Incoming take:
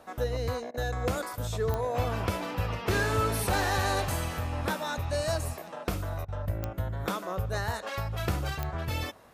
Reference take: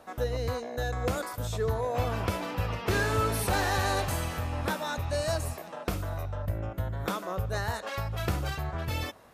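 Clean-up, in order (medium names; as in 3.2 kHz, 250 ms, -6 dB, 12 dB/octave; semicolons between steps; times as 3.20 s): de-click; interpolate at 0.71/6.25 s, 31 ms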